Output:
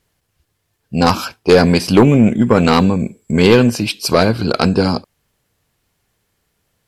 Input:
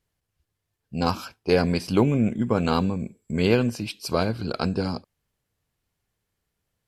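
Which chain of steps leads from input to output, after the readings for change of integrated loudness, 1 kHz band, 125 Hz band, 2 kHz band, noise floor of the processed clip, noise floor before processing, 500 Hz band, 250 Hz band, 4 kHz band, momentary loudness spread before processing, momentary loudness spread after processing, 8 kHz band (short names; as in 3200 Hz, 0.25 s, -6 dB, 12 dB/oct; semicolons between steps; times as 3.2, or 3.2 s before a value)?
+11.0 dB, +11.5 dB, +10.0 dB, +12.0 dB, -69 dBFS, -81 dBFS, +11.0 dB, +11.0 dB, +12.0 dB, 10 LU, 9 LU, +14.0 dB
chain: low shelf 130 Hz -5 dB; sine folder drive 5 dB, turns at -6.5 dBFS; gain +4.5 dB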